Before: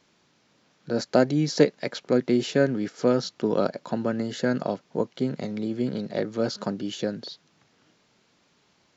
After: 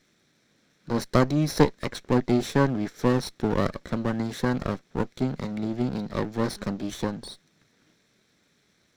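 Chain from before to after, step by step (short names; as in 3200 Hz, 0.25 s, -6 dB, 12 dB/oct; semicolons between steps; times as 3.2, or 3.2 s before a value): minimum comb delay 0.52 ms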